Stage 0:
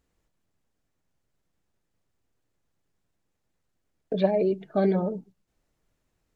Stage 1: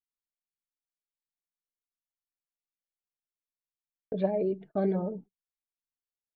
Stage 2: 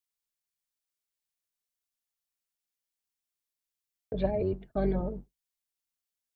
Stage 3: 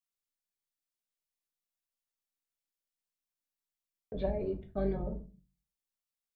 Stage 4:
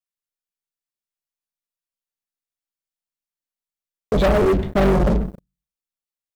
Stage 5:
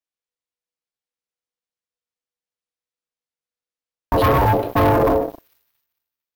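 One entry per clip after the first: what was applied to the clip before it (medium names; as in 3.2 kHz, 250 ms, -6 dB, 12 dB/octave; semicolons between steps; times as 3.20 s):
low-pass 1.3 kHz 6 dB/octave; gate -42 dBFS, range -33 dB; trim -4.5 dB
octave divider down 2 oct, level -1 dB; treble shelf 2.1 kHz +9 dB; trim -2 dB
simulated room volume 130 m³, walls furnished, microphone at 1.1 m; trim -7 dB
waveshaping leveller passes 5; trim +7 dB
careless resampling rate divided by 3×, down filtered, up hold; feedback echo behind a high-pass 225 ms, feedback 36%, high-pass 4.7 kHz, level -12 dB; ring modulator 490 Hz; trim +3.5 dB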